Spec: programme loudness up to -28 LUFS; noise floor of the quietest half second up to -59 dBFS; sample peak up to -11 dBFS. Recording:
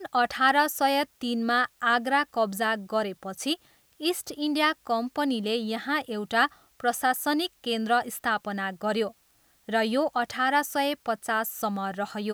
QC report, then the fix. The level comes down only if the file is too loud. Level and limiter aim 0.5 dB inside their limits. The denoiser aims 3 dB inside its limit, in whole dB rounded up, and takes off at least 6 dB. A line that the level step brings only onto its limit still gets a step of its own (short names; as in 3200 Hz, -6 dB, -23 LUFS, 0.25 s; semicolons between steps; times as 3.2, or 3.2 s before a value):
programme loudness -27.0 LUFS: fail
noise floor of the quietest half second -64 dBFS: OK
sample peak -9.5 dBFS: fail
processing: gain -1.5 dB; limiter -11.5 dBFS